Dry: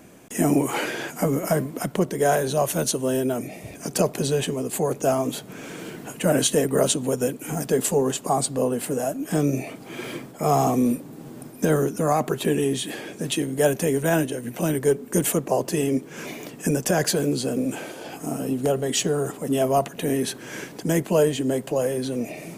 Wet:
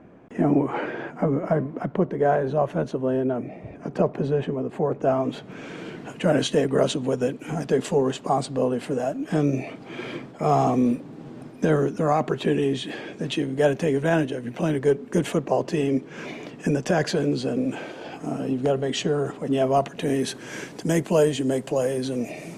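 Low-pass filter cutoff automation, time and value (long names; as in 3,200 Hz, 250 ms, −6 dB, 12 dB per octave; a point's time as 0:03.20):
0:04.93 1,500 Hz
0:05.60 4,000 Hz
0:19.62 4,000 Hz
0:20.37 8,500 Hz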